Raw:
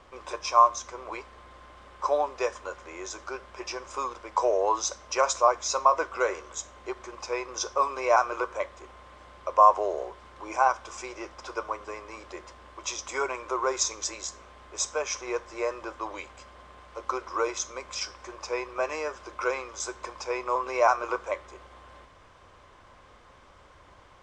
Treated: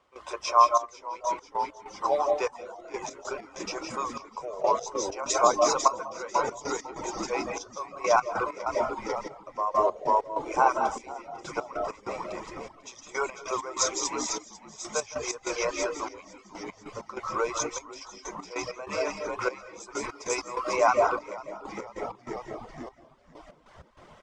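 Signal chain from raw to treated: high-pass 170 Hz 6 dB/octave; band-stop 1.7 kHz, Q 16; frequency-shifting echo 496 ms, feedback 57%, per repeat -87 Hz, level -6 dB; reverberation RT60 0.55 s, pre-delay 120 ms, DRR 3 dB; reverb removal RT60 0.57 s; 15.42–15.94 s: peaking EQ 2.9 kHz +5 dB 1.8 oct; trance gate ".xxxx...x.x" 97 bpm -12 dB; 20.09–20.76 s: treble shelf 5.1 kHz +10.5 dB

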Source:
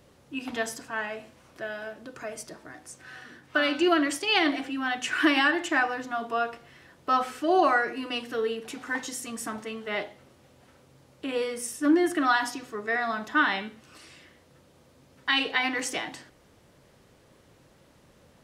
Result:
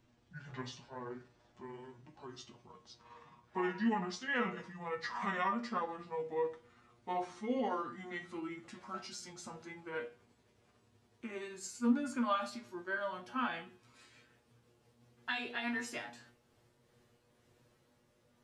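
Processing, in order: pitch bend over the whole clip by -10 st ending unshifted; feedback comb 120 Hz, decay 0.18 s, harmonics all, mix 90%; trim -3 dB

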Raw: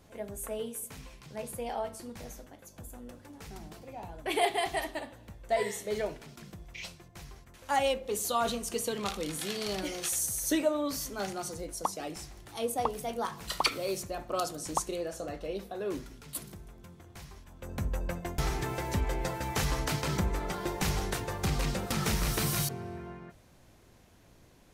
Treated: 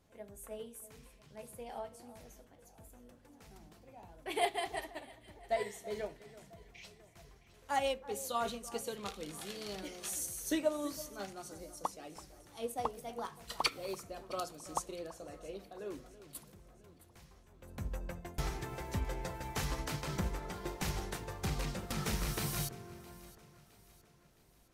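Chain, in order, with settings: echo whose repeats swap between lows and highs 332 ms, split 1.8 kHz, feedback 69%, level -12.5 dB; upward expansion 1.5:1, over -38 dBFS; trim -3.5 dB

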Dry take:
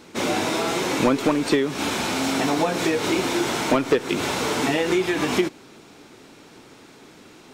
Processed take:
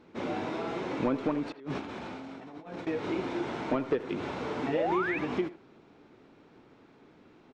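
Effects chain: 1.52–2.87 s: compressor with a negative ratio -29 dBFS, ratio -0.5; 4.72–5.19 s: painted sound rise 410–2700 Hz -20 dBFS; tape spacing loss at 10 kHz 30 dB; speakerphone echo 80 ms, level -13 dB; trim -8 dB

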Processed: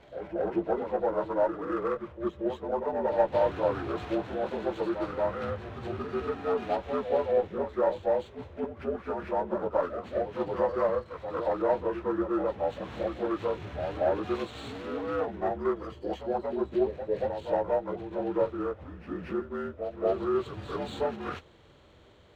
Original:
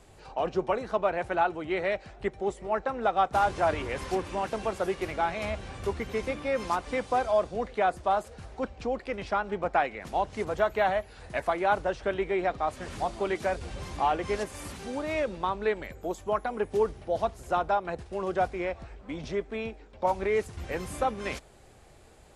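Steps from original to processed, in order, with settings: frequency axis rescaled in octaves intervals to 75%; reverse echo 231 ms -8 dB; sliding maximum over 3 samples

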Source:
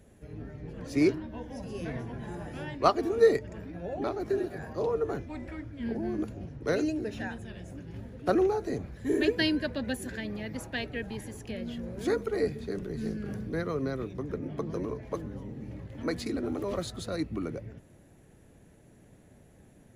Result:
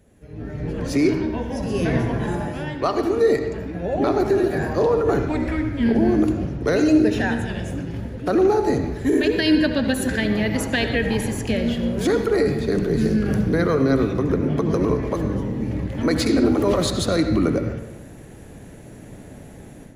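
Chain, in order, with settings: level rider gain up to 15.5 dB; peak limiter -11 dBFS, peak gain reduction 10 dB; reverberation RT60 1.0 s, pre-delay 63 ms, DRR 7 dB

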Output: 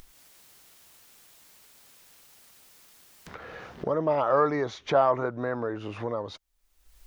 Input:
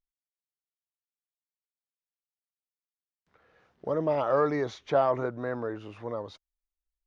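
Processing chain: dynamic bell 1.1 kHz, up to +5 dB, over -37 dBFS, Q 1.1; upward compressor, threshold -24 dBFS

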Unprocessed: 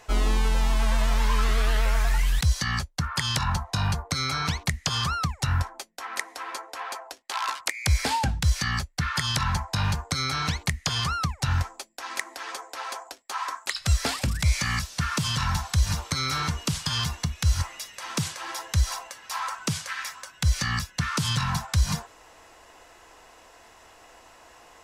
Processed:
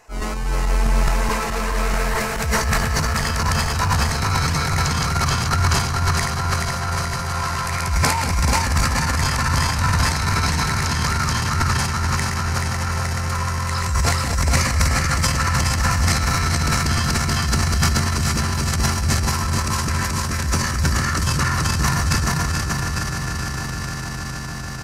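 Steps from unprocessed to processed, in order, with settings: backward echo that repeats 215 ms, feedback 80%, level 0 dB; peaking EQ 3.4 kHz -11 dB 0.44 oct; doubling 13 ms -11.5 dB; echo with a slow build-up 151 ms, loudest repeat 8, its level -15.5 dB; transient shaper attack -10 dB, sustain +9 dB

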